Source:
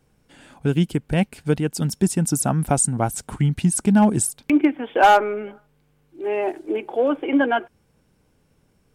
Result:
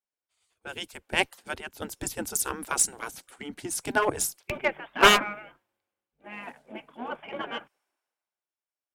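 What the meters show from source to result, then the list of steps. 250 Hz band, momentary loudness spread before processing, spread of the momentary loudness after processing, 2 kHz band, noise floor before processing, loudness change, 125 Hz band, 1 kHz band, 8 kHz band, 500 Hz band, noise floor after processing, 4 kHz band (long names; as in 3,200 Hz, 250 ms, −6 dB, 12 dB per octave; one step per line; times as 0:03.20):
−18.5 dB, 10 LU, 21 LU, 0.0 dB, −63 dBFS, −5.5 dB, −23.0 dB, −8.0 dB, −4.5 dB, −9.0 dB, below −85 dBFS, +5.5 dB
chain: gate on every frequency bin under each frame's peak −15 dB weak
harmonic generator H 6 −32 dB, 7 −26 dB, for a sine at −10 dBFS
multiband upward and downward expander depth 70%
level +3.5 dB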